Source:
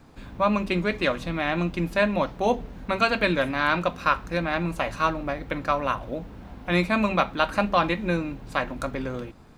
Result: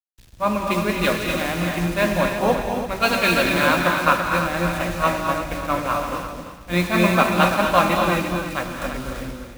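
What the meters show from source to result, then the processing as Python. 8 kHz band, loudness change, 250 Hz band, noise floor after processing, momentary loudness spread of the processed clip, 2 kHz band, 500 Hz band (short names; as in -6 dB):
+15.0 dB, +5.0 dB, +4.0 dB, -42 dBFS, 11 LU, +5.0 dB, +4.0 dB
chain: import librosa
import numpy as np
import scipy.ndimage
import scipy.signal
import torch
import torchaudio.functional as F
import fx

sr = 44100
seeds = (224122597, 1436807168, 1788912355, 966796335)

p1 = fx.quant_dither(x, sr, seeds[0], bits=6, dither='none')
p2 = p1 + fx.echo_feedback(p1, sr, ms=340, feedback_pct=38, wet_db=-6.5, dry=0)
p3 = fx.rev_gated(p2, sr, seeds[1], gate_ms=290, shape='rising', drr_db=0.5)
p4 = fx.band_widen(p3, sr, depth_pct=100)
y = F.gain(torch.from_numpy(p4), 1.0).numpy()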